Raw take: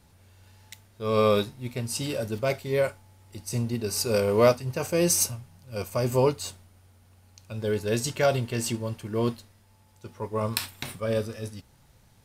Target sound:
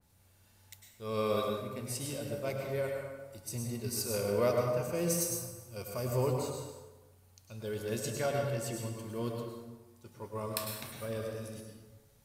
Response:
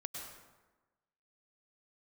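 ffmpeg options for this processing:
-filter_complex "[0:a]highshelf=f=7600:g=10.5[s0];[1:a]atrim=start_sample=2205[s1];[s0][s1]afir=irnorm=-1:irlink=0,adynamicequalizer=threshold=0.00708:dfrequency=2400:dqfactor=0.7:tfrequency=2400:tqfactor=0.7:attack=5:release=100:ratio=0.375:range=3:mode=cutabove:tftype=highshelf,volume=0.447"

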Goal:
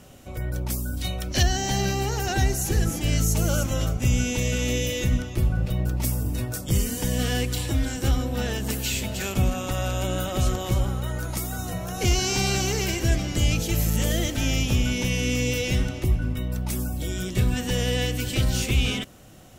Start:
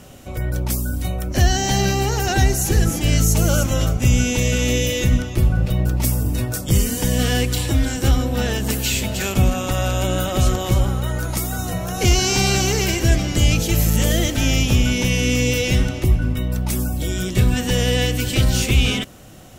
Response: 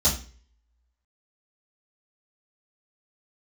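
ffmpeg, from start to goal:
-filter_complex "[0:a]asettb=1/sr,asplit=3[s0][s1][s2];[s0]atrim=end=0.974[s3];[s1]atrim=start=0.97:end=1.43,asetpts=PTS-STARTPTS,afade=t=in:d=0.004:c=qsin,afade=t=out:st=0.456:d=0.004:c=qsin,equalizer=f=3900:w=0.77:g=12[s4];[s2]atrim=start=1.426[s5];[s3][s4]acrossfade=d=0.004:c1=hsin:c2=qsin[s6];[s6][s5]acrossfade=d=0.004:c1=qsin:c2=hsin,volume=0.501"

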